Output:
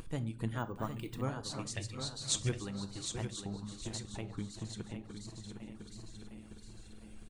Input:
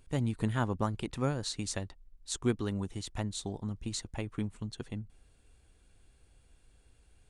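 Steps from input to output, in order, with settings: regenerating reverse delay 0.354 s, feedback 65%, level -10 dB; reverb removal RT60 0.75 s; 1.77–2.49 graphic EQ 125/250/1000/2000/4000/8000 Hz +11/-11/-11/+7/+9/+9 dB; upward compressor, threshold -33 dBFS; vibrato 2.9 Hz 41 cents; feedback echo 0.759 s, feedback 33%, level -8 dB; shoebox room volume 470 m³, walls furnished, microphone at 0.61 m; 0.58–1.23 careless resampling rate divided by 2×, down filtered, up hold; gain -6 dB

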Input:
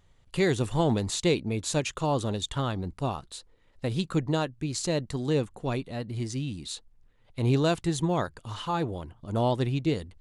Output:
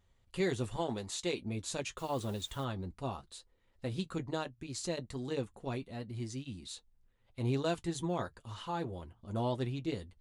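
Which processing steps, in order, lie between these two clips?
0.76–1.42 low shelf 230 Hz -10 dB; 1.97–2.63 added noise white -52 dBFS; notch comb 150 Hz; gain -7 dB

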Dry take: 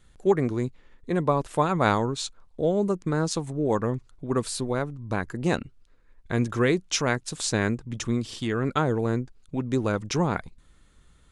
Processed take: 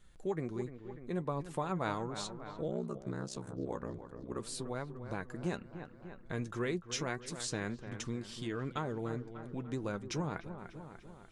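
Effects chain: dark delay 0.296 s, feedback 51%, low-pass 2600 Hz, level -13 dB; flange 1.8 Hz, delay 4.9 ms, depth 1.9 ms, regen +60%; compressor 1.5:1, threshold -45 dBFS, peak gain reduction 9 dB; 2.67–4.4 ring modulator 32 Hz; gain -1 dB

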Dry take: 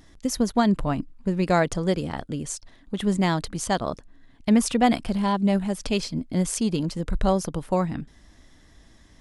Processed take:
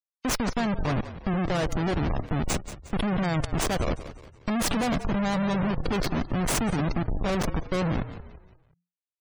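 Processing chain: Schmitt trigger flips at -29 dBFS; frequency-shifting echo 0.178 s, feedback 42%, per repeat -44 Hz, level -13 dB; spectral gate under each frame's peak -30 dB strong

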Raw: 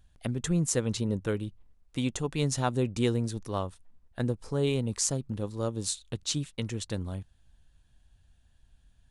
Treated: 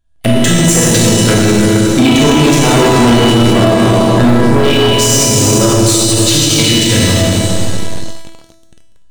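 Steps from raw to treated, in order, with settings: 1.99–4.6 bell 250 Hz +9 dB 2.6 oct; Schroeder reverb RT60 3.3 s, combs from 26 ms, DRR -6 dB; dynamic EQ 2500 Hz, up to +5 dB, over -43 dBFS, Q 1.1; sample leveller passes 5; resonator 330 Hz, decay 0.87 s, mix 90%; maximiser +22 dB; gain -1 dB

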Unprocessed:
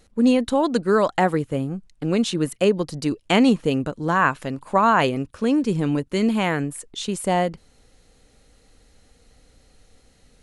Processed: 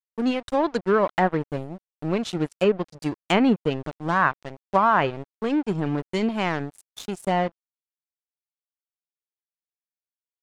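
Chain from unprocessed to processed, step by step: spectral noise reduction 8 dB; crossover distortion -30.5 dBFS; treble ducked by the level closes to 2400 Hz, closed at -15.5 dBFS

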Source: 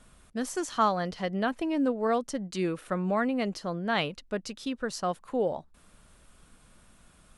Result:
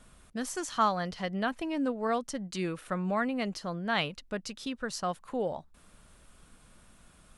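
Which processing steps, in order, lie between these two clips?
dynamic EQ 390 Hz, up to -5 dB, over -42 dBFS, Q 0.76

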